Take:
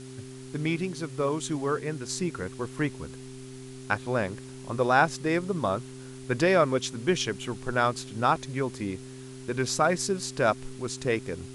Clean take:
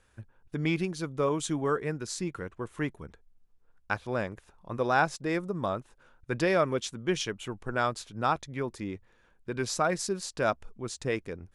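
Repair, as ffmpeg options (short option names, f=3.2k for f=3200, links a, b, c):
-af "bandreject=f=129.9:t=h:w=4,bandreject=f=259.8:t=h:w=4,bandreject=f=389.7:t=h:w=4,afwtdn=0.0032,asetnsamples=n=441:p=0,asendcmd='2.09 volume volume -3.5dB',volume=0dB"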